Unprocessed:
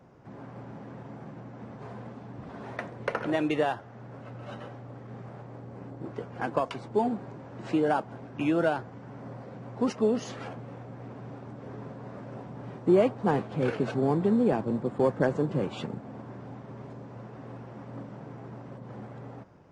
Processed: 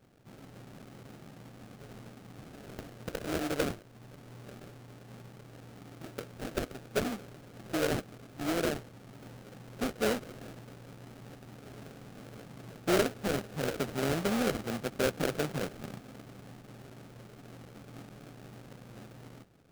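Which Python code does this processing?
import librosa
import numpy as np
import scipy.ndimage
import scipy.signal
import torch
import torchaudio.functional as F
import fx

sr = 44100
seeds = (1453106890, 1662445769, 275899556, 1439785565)

y = fx.dynamic_eq(x, sr, hz=460.0, q=3.4, threshold_db=-42.0, ratio=4.0, max_db=4)
y = fx.sample_hold(y, sr, seeds[0], rate_hz=1000.0, jitter_pct=20)
y = F.gain(torch.from_numpy(y), -7.0).numpy()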